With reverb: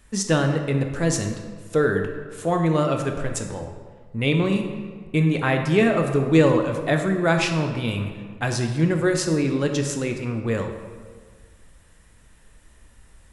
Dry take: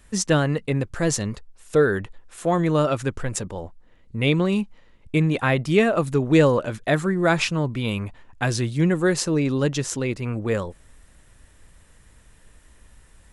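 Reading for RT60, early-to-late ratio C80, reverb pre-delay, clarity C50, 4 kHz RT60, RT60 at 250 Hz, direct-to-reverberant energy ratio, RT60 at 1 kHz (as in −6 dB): 1.6 s, 8.0 dB, 11 ms, 6.0 dB, 1.0 s, 1.7 s, 4.0 dB, 1.6 s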